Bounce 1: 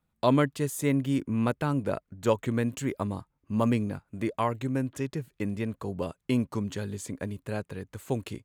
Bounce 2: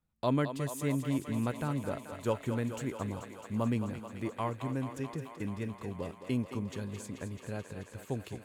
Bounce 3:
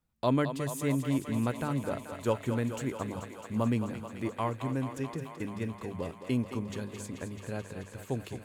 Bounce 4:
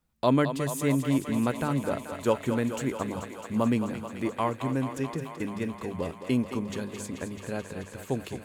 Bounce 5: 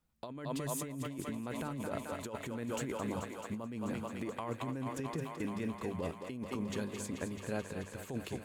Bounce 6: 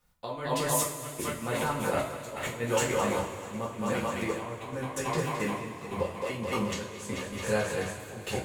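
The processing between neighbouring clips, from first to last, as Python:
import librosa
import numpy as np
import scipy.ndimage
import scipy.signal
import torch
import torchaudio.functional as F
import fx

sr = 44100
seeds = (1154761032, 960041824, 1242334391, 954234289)

y1 = fx.low_shelf(x, sr, hz=130.0, db=5.5)
y1 = fx.echo_thinned(y1, sr, ms=217, feedback_pct=84, hz=320.0, wet_db=-8.5)
y1 = y1 * 10.0 ** (-7.5 / 20.0)
y2 = fx.hum_notches(y1, sr, base_hz=50, count=4)
y2 = y2 * 10.0 ** (2.5 / 20.0)
y3 = fx.peak_eq(y2, sr, hz=110.0, db=-7.5, octaves=0.33)
y3 = y3 * 10.0 ** (4.5 / 20.0)
y4 = fx.over_compress(y3, sr, threshold_db=-31.0, ratio=-1.0)
y4 = y4 * 10.0 ** (-7.0 / 20.0)
y5 = fx.step_gate(y4, sr, bpm=127, pattern='x.xxxxx...', floor_db=-12.0, edge_ms=4.5)
y5 = fx.peak_eq(y5, sr, hz=240.0, db=-11.5, octaves=0.93)
y5 = fx.rev_double_slope(y5, sr, seeds[0], early_s=0.36, late_s=3.4, knee_db=-17, drr_db=-5.5)
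y5 = y5 * 10.0 ** (7.0 / 20.0)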